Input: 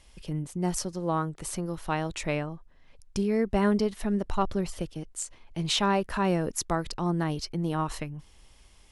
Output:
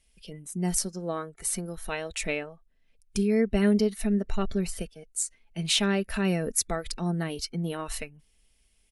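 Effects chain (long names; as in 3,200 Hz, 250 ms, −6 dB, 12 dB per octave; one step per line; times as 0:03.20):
comb filter 4.5 ms, depth 40%
noise reduction from a noise print of the clip's start 13 dB
graphic EQ with 15 bands 1,000 Hz −11 dB, 2,500 Hz +4 dB, 10,000 Hz +9 dB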